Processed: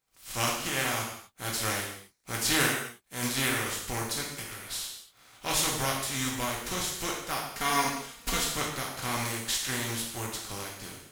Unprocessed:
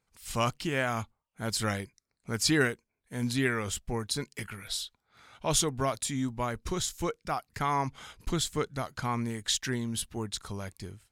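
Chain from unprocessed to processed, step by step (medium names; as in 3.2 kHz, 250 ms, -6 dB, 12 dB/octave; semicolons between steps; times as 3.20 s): spectral contrast reduction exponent 0.43; 7.51–8.44 s: comb 4.3 ms, depth 67%; gated-style reverb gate 280 ms falling, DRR -2.5 dB; trim -4 dB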